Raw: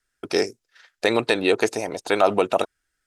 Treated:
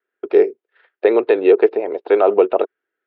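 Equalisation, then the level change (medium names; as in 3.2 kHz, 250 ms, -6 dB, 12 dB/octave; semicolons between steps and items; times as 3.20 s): resonant high-pass 400 Hz, resonance Q 4; low-pass 3.6 kHz 24 dB/octave; distance through air 370 m; 0.0 dB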